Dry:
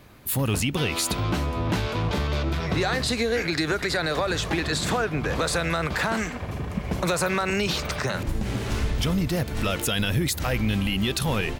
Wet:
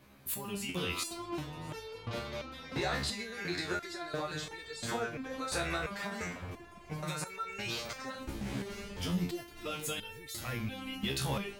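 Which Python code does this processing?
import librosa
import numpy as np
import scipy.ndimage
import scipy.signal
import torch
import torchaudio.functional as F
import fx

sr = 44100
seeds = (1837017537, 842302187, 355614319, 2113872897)

p1 = fx.low_shelf(x, sr, hz=70.0, db=-8.5)
p2 = p1 + fx.echo_single(p1, sr, ms=630, db=-22.5, dry=0)
y = fx.resonator_held(p2, sr, hz=2.9, low_hz=68.0, high_hz=450.0)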